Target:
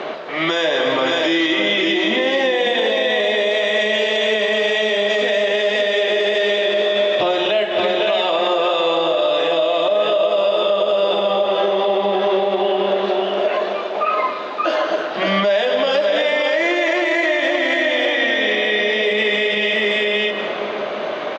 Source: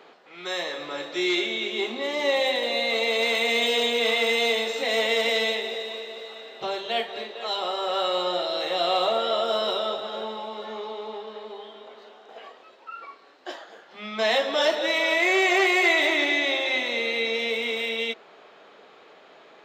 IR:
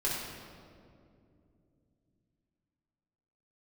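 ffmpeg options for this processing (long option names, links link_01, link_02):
-filter_complex "[0:a]equalizer=frequency=670:width=7.7:gain=10,aecho=1:1:243|525:0.133|0.596,asplit=2[link_01][link_02];[1:a]atrim=start_sample=2205,adelay=102[link_03];[link_02][link_03]afir=irnorm=-1:irlink=0,volume=-20.5dB[link_04];[link_01][link_04]amix=inputs=2:normalize=0,asetrate=40517,aresample=44100,lowpass=5200,acompressor=threshold=-34dB:ratio=12,alimiter=level_in=30.5dB:limit=-1dB:release=50:level=0:latency=1,volume=-8dB"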